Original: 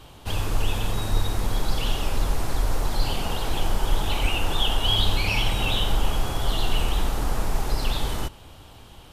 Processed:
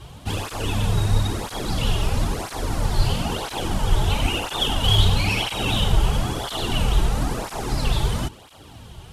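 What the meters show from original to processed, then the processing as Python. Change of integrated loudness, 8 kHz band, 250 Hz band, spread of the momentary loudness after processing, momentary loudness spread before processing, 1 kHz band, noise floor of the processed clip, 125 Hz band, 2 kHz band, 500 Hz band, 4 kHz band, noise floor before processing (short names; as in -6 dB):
+3.0 dB, +3.0 dB, +5.5 dB, 9 LU, 6 LU, +2.5 dB, -43 dBFS, +6.0 dB, +1.5 dB, +3.0 dB, +2.0 dB, -47 dBFS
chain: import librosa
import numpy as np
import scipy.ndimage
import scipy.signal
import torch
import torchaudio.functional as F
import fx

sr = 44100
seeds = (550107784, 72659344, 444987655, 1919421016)

y = fx.cvsd(x, sr, bps=64000)
y = fx.low_shelf(y, sr, hz=200.0, db=7.5)
y = fx.flanger_cancel(y, sr, hz=1.0, depth_ms=4.2)
y = F.gain(torch.from_numpy(y), 5.0).numpy()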